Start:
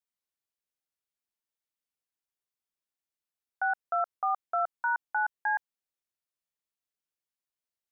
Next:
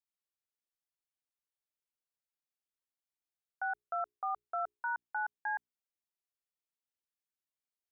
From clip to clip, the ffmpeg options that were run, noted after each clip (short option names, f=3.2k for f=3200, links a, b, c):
-af "bandreject=f=60:t=h:w=6,bandreject=f=120:t=h:w=6,bandreject=f=180:t=h:w=6,bandreject=f=240:t=h:w=6,bandreject=f=300:t=h:w=6,bandreject=f=360:t=h:w=6,bandreject=f=420:t=h:w=6,volume=-7dB"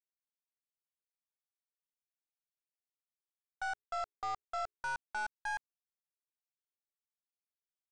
-af "aeval=exprs='0.0422*(cos(1*acos(clip(val(0)/0.0422,-1,1)))-cos(1*PI/2))+0.00237*(cos(3*acos(clip(val(0)/0.0422,-1,1)))-cos(3*PI/2))+0.00335*(cos(4*acos(clip(val(0)/0.0422,-1,1)))-cos(4*PI/2))+0.00376*(cos(7*acos(clip(val(0)/0.0422,-1,1)))-cos(7*PI/2))+0.00075*(cos(8*acos(clip(val(0)/0.0422,-1,1)))-cos(8*PI/2))':c=same,volume=-1.5dB"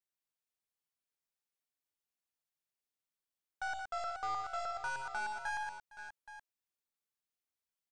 -af "aecho=1:1:58|73|120|460|534|824:0.376|0.251|0.562|0.106|0.251|0.211,volume=-1dB"